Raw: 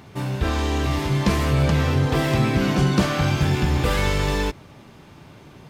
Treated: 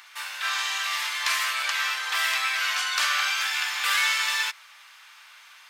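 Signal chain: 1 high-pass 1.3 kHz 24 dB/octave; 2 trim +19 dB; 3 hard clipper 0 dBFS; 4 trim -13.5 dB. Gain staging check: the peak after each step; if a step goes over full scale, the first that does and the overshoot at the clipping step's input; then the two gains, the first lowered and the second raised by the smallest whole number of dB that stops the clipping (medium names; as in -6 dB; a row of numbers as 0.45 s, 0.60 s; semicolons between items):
-13.5 dBFS, +5.5 dBFS, 0.0 dBFS, -13.5 dBFS; step 2, 5.5 dB; step 2 +13 dB, step 4 -7.5 dB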